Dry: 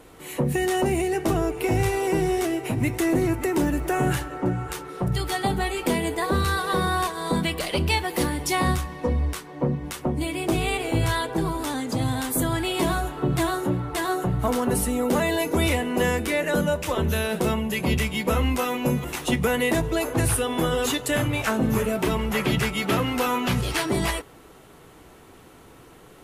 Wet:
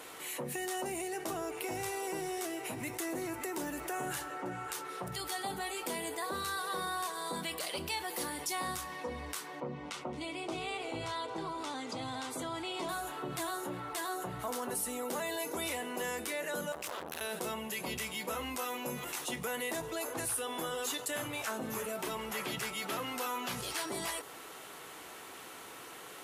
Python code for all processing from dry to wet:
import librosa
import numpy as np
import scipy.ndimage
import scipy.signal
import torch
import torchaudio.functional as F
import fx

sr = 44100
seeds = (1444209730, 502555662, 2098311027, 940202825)

y = fx.chain(x, sr, fx.air_absorb(metres=97.0),
    fx.notch(hz=1700.0, q=6.2),
    fx.echo_single(ms=221, db=-20.0), at=(9.6, 12.89))
y = fx.chain(y, sr, fx.overload_stage(gain_db=24.5),
    fx.transformer_sat(knee_hz=430.0), at=(16.72, 17.21))
y = fx.highpass(y, sr, hz=1200.0, slope=6)
y = fx.dynamic_eq(y, sr, hz=2400.0, q=0.89, threshold_db=-42.0, ratio=4.0, max_db=-6)
y = fx.env_flatten(y, sr, amount_pct=50)
y = F.gain(torch.from_numpy(y), -9.0).numpy()